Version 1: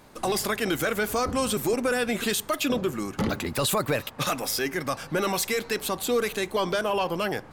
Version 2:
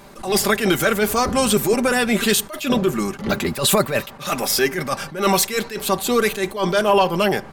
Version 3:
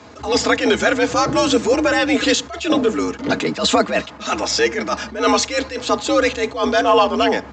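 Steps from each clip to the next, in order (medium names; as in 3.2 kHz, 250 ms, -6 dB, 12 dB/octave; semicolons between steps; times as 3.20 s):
comb 5.1 ms, depth 47%; attacks held to a fixed rise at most 140 dB/s; trim +8 dB
frequency shift +67 Hz; trim +2 dB; A-law 128 kbps 16 kHz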